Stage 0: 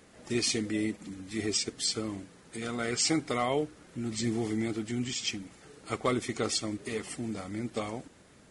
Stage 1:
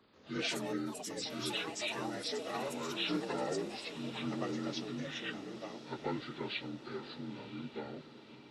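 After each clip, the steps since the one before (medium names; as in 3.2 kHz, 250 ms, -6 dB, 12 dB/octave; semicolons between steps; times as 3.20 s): frequency axis rescaled in octaves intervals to 79%; ever faster or slower copies 135 ms, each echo +6 st, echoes 3; echo that smears into a reverb 1025 ms, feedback 56%, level -13 dB; trim -7.5 dB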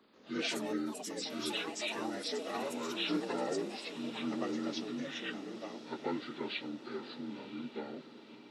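resonant low shelf 160 Hz -9 dB, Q 1.5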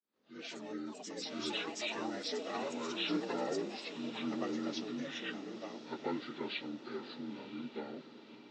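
fade-in on the opening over 1.43 s; steep low-pass 7.4 kHz 48 dB/octave; trim -1 dB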